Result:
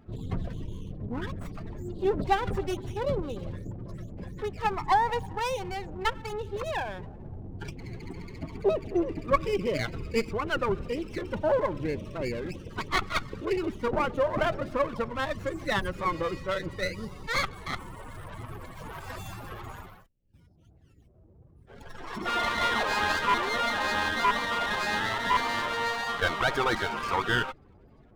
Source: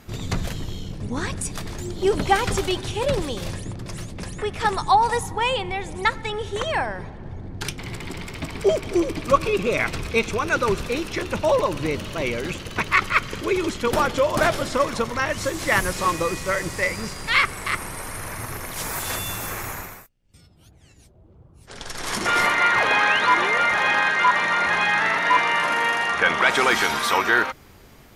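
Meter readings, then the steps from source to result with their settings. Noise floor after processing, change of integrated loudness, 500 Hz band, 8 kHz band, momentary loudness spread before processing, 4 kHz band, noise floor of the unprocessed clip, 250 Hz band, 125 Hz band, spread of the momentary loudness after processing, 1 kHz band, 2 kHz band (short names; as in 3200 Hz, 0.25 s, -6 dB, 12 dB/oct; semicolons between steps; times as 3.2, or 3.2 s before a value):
-56 dBFS, -7.5 dB, -6.0 dB, -14.0 dB, 15 LU, -7.0 dB, -50 dBFS, -5.5 dB, -5.0 dB, 15 LU, -7.0 dB, -10.0 dB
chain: loudest bins only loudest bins 32; running maximum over 9 samples; gain -5.5 dB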